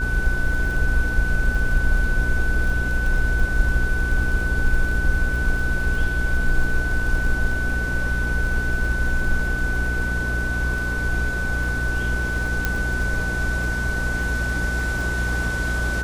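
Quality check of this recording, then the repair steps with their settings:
surface crackle 23 per second −28 dBFS
mains hum 60 Hz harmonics 8 −26 dBFS
whistle 1,500 Hz −25 dBFS
0:12.65: click −7 dBFS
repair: click removal
hum removal 60 Hz, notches 8
notch filter 1,500 Hz, Q 30

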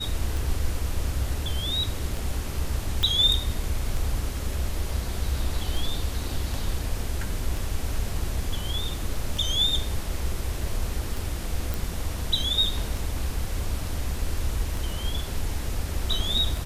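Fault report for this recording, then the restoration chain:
scratch tick 33 1/3 rpm
0:03.03: click −11 dBFS
0:11.74: click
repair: click removal

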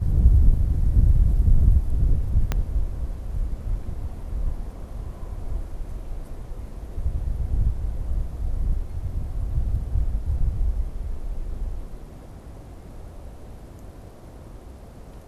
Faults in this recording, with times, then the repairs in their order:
0:02.52: click −10 dBFS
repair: click removal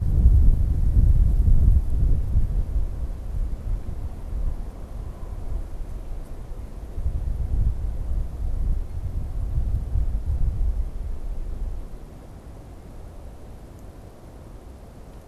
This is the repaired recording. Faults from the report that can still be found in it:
0:02.52: click

